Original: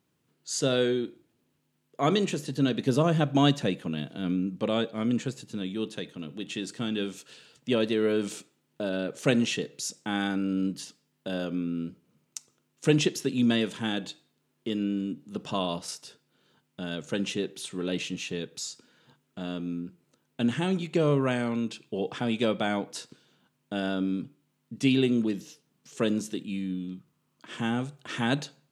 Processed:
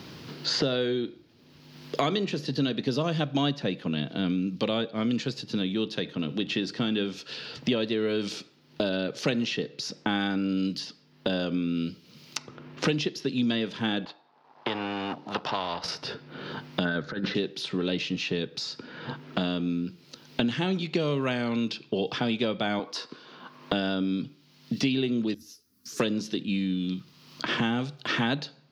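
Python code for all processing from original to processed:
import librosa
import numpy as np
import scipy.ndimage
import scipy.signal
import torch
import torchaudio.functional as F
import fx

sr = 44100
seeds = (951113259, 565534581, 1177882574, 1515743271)

y = fx.chain(x, sr, fx.law_mismatch(coded='A'),
    fx.bandpass_q(hz=880.0, q=4.1),
    fx.spectral_comp(ratio=2.0), at=(14.05, 15.84))
y = fx.chain(y, sr, fx.curve_eq(hz=(1000.0, 1600.0, 2800.0, 4000.0, 8100.0), db=(0, 8, -18, -9, -29)),
    fx.over_compress(threshold_db=-33.0, ratio=-0.5), at=(16.85, 17.35))
y = fx.chain(y, sr, fx.highpass(hz=270.0, slope=12),
    fx.peak_eq(hz=1100.0, db=12.0, octaves=0.24), at=(22.79, 23.73))
y = fx.chain(y, sr, fx.curve_eq(hz=(100.0, 160.0, 240.0, 340.0, 700.0, 1300.0, 1900.0, 3100.0, 6100.0, 11000.0), db=(0, -20, -5, -10, -23, -10, -14, -21, -4, 10)),
    fx.ensemble(), at=(25.34, 26.0))
y = fx.high_shelf_res(y, sr, hz=6300.0, db=-9.5, q=3.0)
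y = fx.band_squash(y, sr, depth_pct=100)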